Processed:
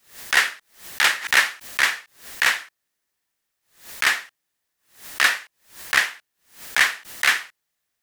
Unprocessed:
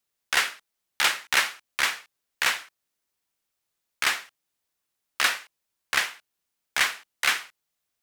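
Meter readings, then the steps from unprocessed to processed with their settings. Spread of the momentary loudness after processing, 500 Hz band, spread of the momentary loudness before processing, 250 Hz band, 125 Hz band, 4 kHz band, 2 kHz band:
18 LU, +3.0 dB, 8 LU, +3.0 dB, n/a, +3.0 dB, +6.5 dB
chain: bell 1800 Hz +7 dB 0.29 oct; backwards sustainer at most 140 dB/s; gain +2.5 dB

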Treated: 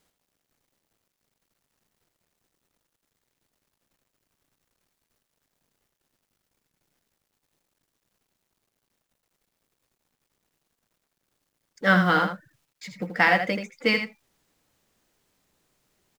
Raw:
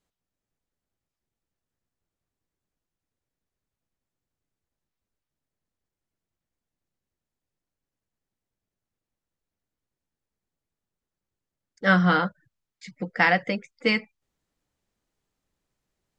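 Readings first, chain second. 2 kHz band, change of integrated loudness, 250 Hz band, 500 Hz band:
+1.0 dB, +0.5 dB, -1.0 dB, +1.0 dB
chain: G.711 law mismatch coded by mu; low shelf 88 Hz -9 dB; on a send: echo 81 ms -8 dB

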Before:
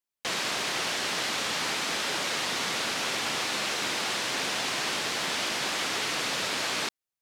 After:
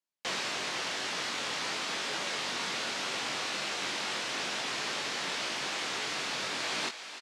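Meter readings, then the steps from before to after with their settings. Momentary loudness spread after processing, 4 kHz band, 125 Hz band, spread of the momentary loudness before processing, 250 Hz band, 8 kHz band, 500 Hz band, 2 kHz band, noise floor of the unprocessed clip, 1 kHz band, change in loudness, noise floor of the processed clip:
0 LU, -4.5 dB, -6.0 dB, 0 LU, -5.0 dB, -6.0 dB, -4.5 dB, -4.0 dB, under -85 dBFS, -4.0 dB, -4.5 dB, -44 dBFS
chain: LPF 8000 Hz 12 dB/oct; low shelf 60 Hz -10.5 dB; vocal rider within 3 dB; doubler 21 ms -6 dB; thinning echo 0.295 s, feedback 79%, high-pass 420 Hz, level -13 dB; gain -5.5 dB

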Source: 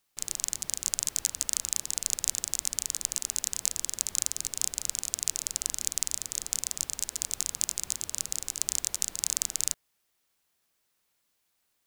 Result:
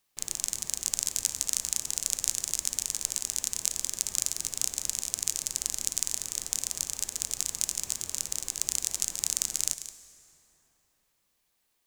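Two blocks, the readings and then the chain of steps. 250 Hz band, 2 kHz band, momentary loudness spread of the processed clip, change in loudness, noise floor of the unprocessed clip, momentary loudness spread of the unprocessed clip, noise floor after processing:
+0.5 dB, +0.5 dB, 4 LU, +0.5 dB, -76 dBFS, 4 LU, -75 dBFS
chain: reverse delay 0.171 s, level -12 dB; notch 1400 Hz, Q 13; plate-style reverb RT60 3.7 s, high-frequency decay 0.55×, DRR 12.5 dB

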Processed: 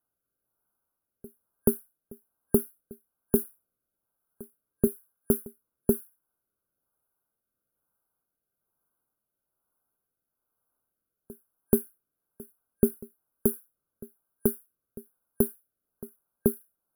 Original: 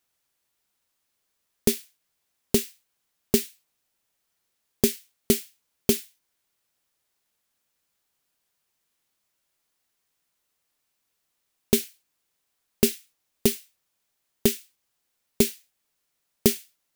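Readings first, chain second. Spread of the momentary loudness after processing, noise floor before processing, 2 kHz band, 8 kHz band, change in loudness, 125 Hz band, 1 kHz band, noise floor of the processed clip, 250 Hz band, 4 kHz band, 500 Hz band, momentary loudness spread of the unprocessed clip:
20 LU, -77 dBFS, under -15 dB, -9.0 dB, -3.5 dB, -1.5 dB, -3.5 dB, under -85 dBFS, -1.5 dB, under -40 dB, -1.5 dB, 13 LU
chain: reverse echo 0.431 s -21.5 dB; FFT band-reject 1600–9800 Hz; rotary speaker horn 1.1 Hz

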